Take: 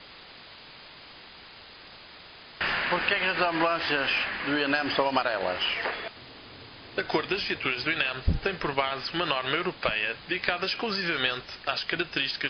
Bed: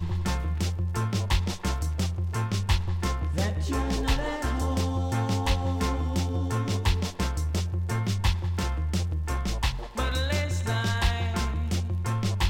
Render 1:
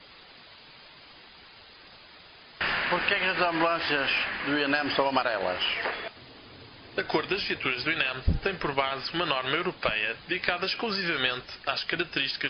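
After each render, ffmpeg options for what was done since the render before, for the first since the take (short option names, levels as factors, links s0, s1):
-af "afftdn=nr=6:nf=-48"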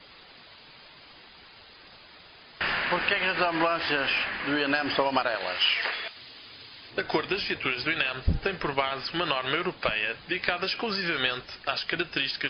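-filter_complex "[0:a]asettb=1/sr,asplit=3[s0][s1][s2];[s0]atrim=end=5.354[s3];[s1]atrim=start=5.35:end=6.91,asetpts=PTS-STARTPTS,afade=t=in:d=0.004:c=qsin,afade=t=out:st=1.556:d=0.004:c=qsin,tiltshelf=f=1400:g=-8[s4];[s2]atrim=start=6.906[s5];[s3][s4]acrossfade=d=0.004:c1=hsin:c2=qsin[s6];[s6][s5]acrossfade=d=0.004:c1=qsin:c2=hsin"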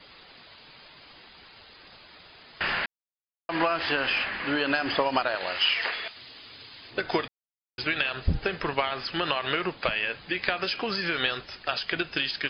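-filter_complex "[0:a]asplit=5[s0][s1][s2][s3][s4];[s0]atrim=end=2.86,asetpts=PTS-STARTPTS,afade=t=out:st=2.856:d=0.004:c=hsin[s5];[s1]atrim=start=2.86:end=3.49,asetpts=PTS-STARTPTS,volume=0[s6];[s2]atrim=start=3.49:end=7.28,asetpts=PTS-STARTPTS,afade=t=in:d=0.004:c=hsin,afade=t=out:st=3.786:d=0.004:c=hsin[s7];[s3]atrim=start=7.28:end=7.78,asetpts=PTS-STARTPTS,volume=0[s8];[s4]atrim=start=7.78,asetpts=PTS-STARTPTS,afade=t=in:d=0.004:c=hsin[s9];[s5][s6][s7][s8][s9]concat=n=5:v=0:a=1"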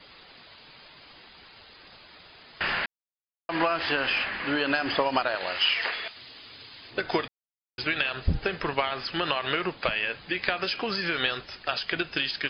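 -af anull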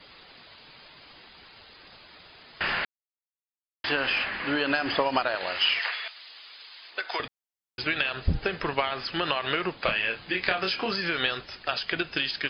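-filter_complex "[0:a]asettb=1/sr,asplit=3[s0][s1][s2];[s0]atrim=end=5.794[s3];[s1]atrim=start=5.79:end=7.2,asetpts=PTS-STARTPTS,afade=t=in:d=0.004:c=qsin,afade=t=out:st=1.406:d=0.004:c=qsin,highpass=830[s4];[s2]atrim=start=7.196[s5];[s3][s4]acrossfade=d=0.004:c1=hsin:c2=qsin[s6];[s6][s5]acrossfade=d=0.004:c1=qsin:c2=hsin,asettb=1/sr,asplit=3[s7][s8][s9];[s7]atrim=end=9.844[s10];[s8]atrim=start=9.84:end=10.93,asetpts=PTS-STARTPTS,afade=t=in:d=0.004:c=qsin,afade=t=out:st=1.086:d=0.004:c=qsin,asplit=2[s11][s12];[s12]adelay=27,volume=0.562[s13];[s11][s13]amix=inputs=2:normalize=0,atrim=end_sample=48069[s14];[s9]atrim=start=10.926[s15];[s10][s14]acrossfade=d=0.004:c1=hsin:c2=qsin[s16];[s16][s15]acrossfade=d=0.004:c1=qsin:c2=hsin,asplit=3[s17][s18][s19];[s17]atrim=end=2.85,asetpts=PTS-STARTPTS,afade=t=out:st=2.846:d=0.004:c=hsin[s20];[s18]atrim=start=2.85:end=3.84,asetpts=PTS-STARTPTS,volume=0[s21];[s19]atrim=start=3.84,asetpts=PTS-STARTPTS,afade=t=in:d=0.004:c=hsin[s22];[s20][s21][s22]concat=n=3:v=0:a=1"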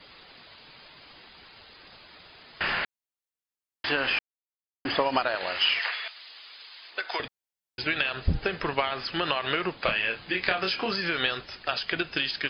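-filter_complex "[0:a]asettb=1/sr,asplit=3[s0][s1][s2];[s0]atrim=end=7.184[s3];[s1]atrim=start=7.18:end=7.89,asetpts=PTS-STARTPTS,afade=t=in:d=0.004:c=qsin,afade=t=out:st=0.706:d=0.004:c=qsin,bandreject=f=1200:w=7.6[s4];[s2]atrim=start=7.886[s5];[s3][s4]acrossfade=d=0.004:c1=hsin:c2=qsin[s6];[s6][s5]acrossfade=d=0.004:c1=qsin:c2=hsin,asplit=3[s7][s8][s9];[s7]atrim=end=4.19,asetpts=PTS-STARTPTS,afade=t=out:st=4.186:d=0.004:c=hsin[s10];[s8]atrim=start=4.19:end=4.85,asetpts=PTS-STARTPTS,volume=0[s11];[s9]atrim=start=4.85,asetpts=PTS-STARTPTS,afade=t=in:d=0.004:c=hsin[s12];[s10][s11][s12]concat=n=3:v=0:a=1"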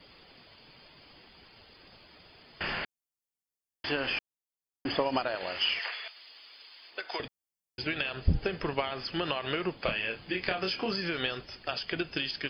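-af "equalizer=f=1500:w=0.56:g=-7.5,bandreject=f=3900:w=5.3"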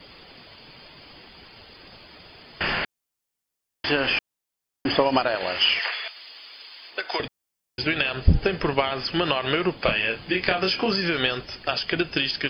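-af "volume=2.66"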